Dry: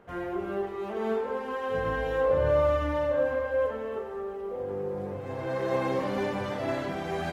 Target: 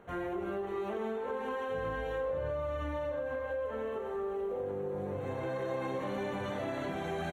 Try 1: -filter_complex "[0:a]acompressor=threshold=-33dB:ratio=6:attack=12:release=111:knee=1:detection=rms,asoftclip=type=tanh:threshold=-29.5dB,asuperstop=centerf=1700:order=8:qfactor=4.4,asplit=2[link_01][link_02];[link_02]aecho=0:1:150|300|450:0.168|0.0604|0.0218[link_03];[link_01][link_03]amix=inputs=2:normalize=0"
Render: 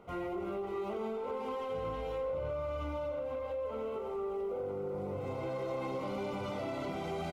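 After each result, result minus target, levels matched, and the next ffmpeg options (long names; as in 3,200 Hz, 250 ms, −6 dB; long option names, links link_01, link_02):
soft clipping: distortion +19 dB; 2,000 Hz band −5.5 dB
-filter_complex "[0:a]acompressor=threshold=-33dB:ratio=6:attack=12:release=111:knee=1:detection=rms,asoftclip=type=tanh:threshold=-18.5dB,asuperstop=centerf=1700:order=8:qfactor=4.4,asplit=2[link_01][link_02];[link_02]aecho=0:1:150|300|450:0.168|0.0604|0.0218[link_03];[link_01][link_03]amix=inputs=2:normalize=0"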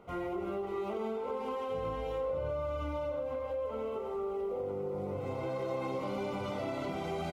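2,000 Hz band −5.5 dB
-filter_complex "[0:a]acompressor=threshold=-33dB:ratio=6:attack=12:release=111:knee=1:detection=rms,asoftclip=type=tanh:threshold=-18.5dB,asuperstop=centerf=5000:order=8:qfactor=4.4,asplit=2[link_01][link_02];[link_02]aecho=0:1:150|300|450:0.168|0.0604|0.0218[link_03];[link_01][link_03]amix=inputs=2:normalize=0"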